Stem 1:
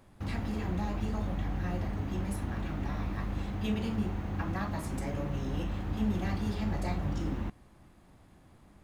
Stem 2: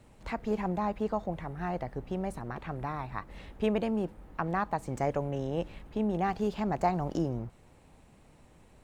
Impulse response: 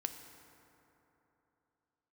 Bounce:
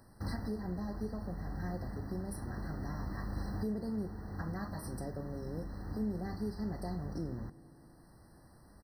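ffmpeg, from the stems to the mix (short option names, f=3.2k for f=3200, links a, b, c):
-filter_complex "[0:a]highshelf=f=3.8k:g=10.5,volume=-2.5dB[a];[1:a]acrossover=split=460[b][c];[c]acompressor=threshold=-46dB:ratio=6[d];[b][d]amix=inputs=2:normalize=0,adelay=2.1,volume=-12.5dB,asplit=3[e][f][g];[f]volume=-3.5dB[h];[g]apad=whole_len=389410[i];[a][i]sidechaincompress=threshold=-49dB:ratio=8:attack=34:release=1070[j];[2:a]atrim=start_sample=2205[k];[h][k]afir=irnorm=-1:irlink=0[l];[j][e][l]amix=inputs=3:normalize=0,afftfilt=real='re*eq(mod(floor(b*sr/1024/2000),2),0)':imag='im*eq(mod(floor(b*sr/1024/2000),2),0)':win_size=1024:overlap=0.75"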